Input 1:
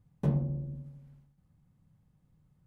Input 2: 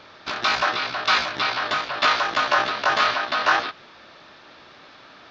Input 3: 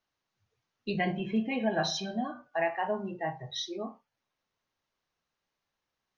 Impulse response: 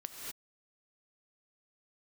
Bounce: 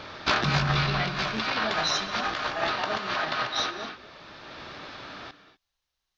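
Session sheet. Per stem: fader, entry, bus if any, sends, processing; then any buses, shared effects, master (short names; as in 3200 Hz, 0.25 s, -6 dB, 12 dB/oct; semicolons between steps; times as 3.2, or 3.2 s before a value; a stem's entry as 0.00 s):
-7.5 dB, 0.20 s, no send, AGC gain up to 14.5 dB
0.0 dB, 0.00 s, send -6.5 dB, negative-ratio compressor -24 dBFS, ratio -0.5; auto duck -14 dB, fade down 0.50 s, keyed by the third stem
+1.5 dB, 0.00 s, send -10 dB, ten-band EQ 125 Hz -10 dB, 250 Hz -11 dB, 500 Hz -6 dB, 1000 Hz -4 dB, 2000 Hz -4 dB, 4000 Hz +4 dB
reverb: on, pre-delay 3 ms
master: low shelf 140 Hz +8.5 dB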